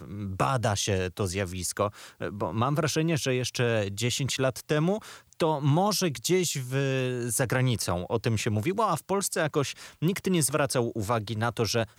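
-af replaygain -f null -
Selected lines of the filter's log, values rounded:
track_gain = +8.9 dB
track_peak = 0.211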